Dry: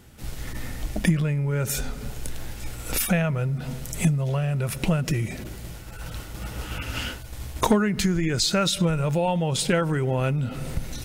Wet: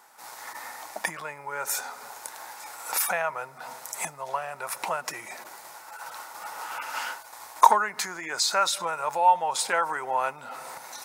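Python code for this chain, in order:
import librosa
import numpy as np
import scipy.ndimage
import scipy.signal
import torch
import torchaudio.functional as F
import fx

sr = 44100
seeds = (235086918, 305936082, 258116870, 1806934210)

y = fx.highpass_res(x, sr, hz=910.0, q=3.7)
y = fx.peak_eq(y, sr, hz=3000.0, db=-9.5, octaves=0.59)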